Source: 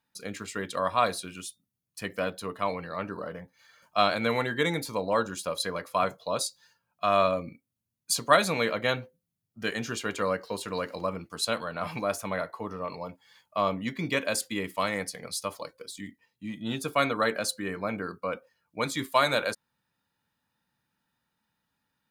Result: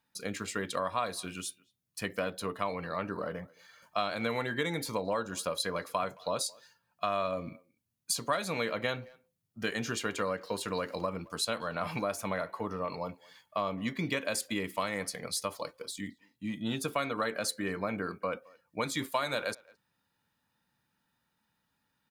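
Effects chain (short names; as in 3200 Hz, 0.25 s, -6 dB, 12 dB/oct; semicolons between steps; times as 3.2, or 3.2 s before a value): compressor 4:1, threshold -30 dBFS, peak gain reduction 13.5 dB; speakerphone echo 0.22 s, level -24 dB; gain +1 dB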